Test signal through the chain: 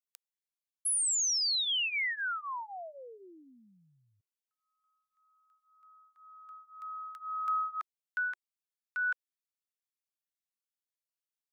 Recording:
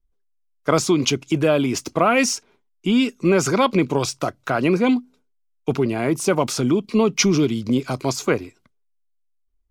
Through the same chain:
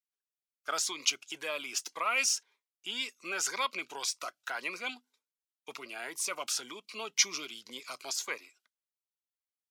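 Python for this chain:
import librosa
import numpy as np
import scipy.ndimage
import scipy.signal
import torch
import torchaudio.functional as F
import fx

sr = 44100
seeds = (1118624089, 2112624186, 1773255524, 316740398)

y = scipy.signal.sosfilt(scipy.signal.butter(2, 1300.0, 'highpass', fs=sr, output='sos'), x)
y = fx.notch_cascade(y, sr, direction='rising', hz=1.9)
y = y * 10.0 ** (-5.0 / 20.0)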